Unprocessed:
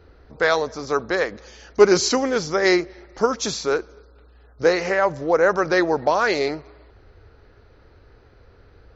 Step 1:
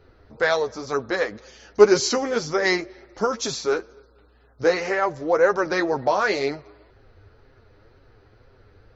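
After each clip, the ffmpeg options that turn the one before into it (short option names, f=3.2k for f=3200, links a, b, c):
-af "flanger=delay=7.4:depth=2.7:regen=25:speed=2:shape=sinusoidal,volume=1.5dB"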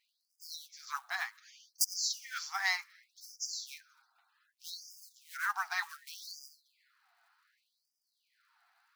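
-af "aeval=exprs='(mod(2.11*val(0)+1,2)-1)/2.11':c=same,acrusher=bits=6:mode=log:mix=0:aa=0.000001,afftfilt=real='re*gte(b*sr/1024,650*pow(4800/650,0.5+0.5*sin(2*PI*0.66*pts/sr)))':imag='im*gte(b*sr/1024,650*pow(4800/650,0.5+0.5*sin(2*PI*0.66*pts/sr)))':win_size=1024:overlap=0.75,volume=-8dB"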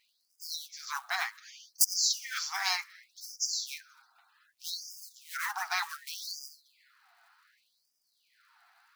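-af "afftfilt=real='re*lt(hypot(re,im),0.0891)':imag='im*lt(hypot(re,im),0.0891)':win_size=1024:overlap=0.75,volume=7dB"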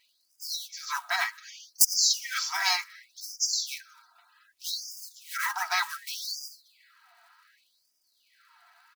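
-af "aecho=1:1:3.1:0.68,volume=3dB"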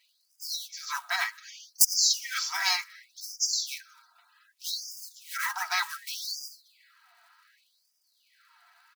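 -af "highpass=f=810:p=1"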